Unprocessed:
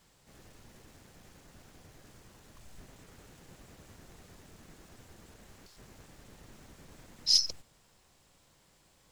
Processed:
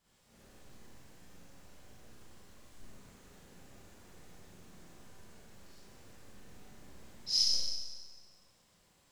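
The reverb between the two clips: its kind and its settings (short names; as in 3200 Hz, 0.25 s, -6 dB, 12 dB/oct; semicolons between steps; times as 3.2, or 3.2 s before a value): Schroeder reverb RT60 1.4 s, combs from 31 ms, DRR -9.5 dB; gain -12.5 dB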